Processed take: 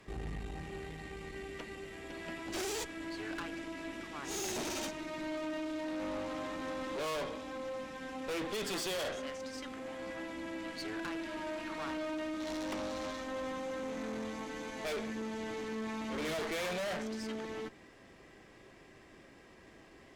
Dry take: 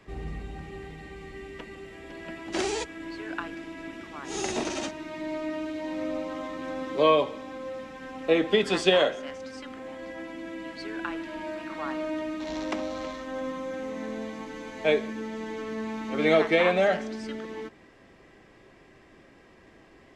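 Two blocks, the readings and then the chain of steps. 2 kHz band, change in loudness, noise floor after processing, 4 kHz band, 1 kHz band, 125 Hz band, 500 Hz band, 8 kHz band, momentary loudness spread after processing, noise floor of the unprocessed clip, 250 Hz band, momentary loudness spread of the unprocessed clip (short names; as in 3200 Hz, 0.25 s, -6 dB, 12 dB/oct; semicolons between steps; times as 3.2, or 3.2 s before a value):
-8.5 dB, -10.0 dB, -58 dBFS, -8.0 dB, -9.0 dB, -7.0 dB, -11.5 dB, -2.0 dB, 21 LU, -55 dBFS, -7.5 dB, 18 LU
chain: high shelf 5200 Hz +7.5 dB; tube stage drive 35 dB, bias 0.6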